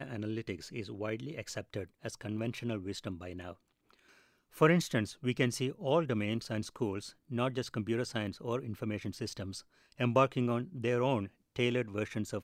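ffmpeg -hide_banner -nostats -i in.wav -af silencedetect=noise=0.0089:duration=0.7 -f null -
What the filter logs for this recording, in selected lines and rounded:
silence_start: 3.53
silence_end: 4.57 | silence_duration: 1.04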